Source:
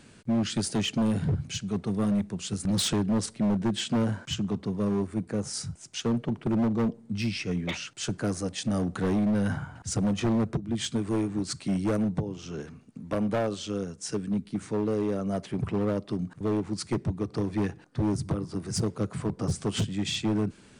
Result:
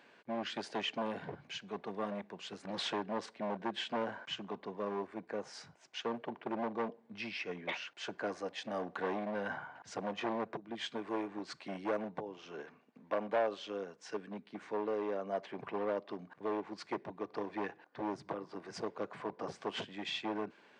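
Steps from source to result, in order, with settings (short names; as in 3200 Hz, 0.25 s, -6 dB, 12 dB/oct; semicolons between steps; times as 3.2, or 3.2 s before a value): HPF 750 Hz 12 dB/oct; tape spacing loss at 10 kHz 37 dB; notch 1300 Hz, Q 7.1; gain +5 dB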